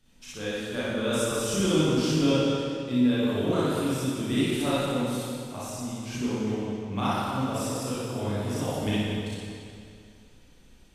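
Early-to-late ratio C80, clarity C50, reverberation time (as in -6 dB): -3.0 dB, -7.5 dB, 2.4 s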